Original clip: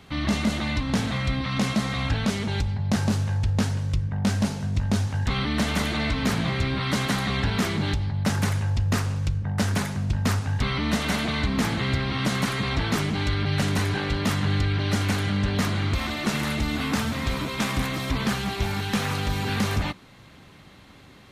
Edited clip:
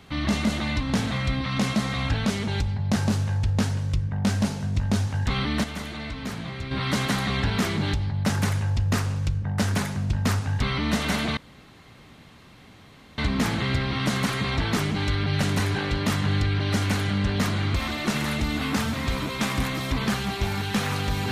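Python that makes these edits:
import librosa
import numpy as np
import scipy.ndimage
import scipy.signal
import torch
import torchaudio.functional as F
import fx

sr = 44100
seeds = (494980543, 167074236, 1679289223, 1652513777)

y = fx.edit(x, sr, fx.fade_down_up(start_s=5.41, length_s=1.53, db=-8.5, fade_s=0.23, curve='log'),
    fx.insert_room_tone(at_s=11.37, length_s=1.81), tone=tone)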